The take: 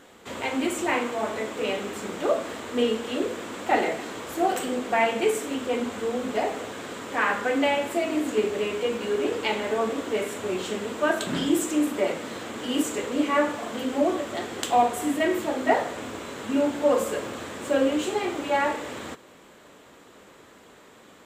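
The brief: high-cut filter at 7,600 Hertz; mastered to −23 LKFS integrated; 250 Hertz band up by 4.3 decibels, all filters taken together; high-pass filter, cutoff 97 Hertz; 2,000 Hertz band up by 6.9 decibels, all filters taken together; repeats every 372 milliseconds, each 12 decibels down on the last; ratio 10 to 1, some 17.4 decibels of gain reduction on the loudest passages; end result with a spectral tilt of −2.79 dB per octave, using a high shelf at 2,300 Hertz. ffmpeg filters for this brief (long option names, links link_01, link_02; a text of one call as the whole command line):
ffmpeg -i in.wav -af "highpass=97,lowpass=7600,equalizer=frequency=250:width_type=o:gain=5,equalizer=frequency=2000:width_type=o:gain=4,highshelf=frequency=2300:gain=8.5,acompressor=threshold=-32dB:ratio=10,aecho=1:1:372|744|1116:0.251|0.0628|0.0157,volume=12dB" out.wav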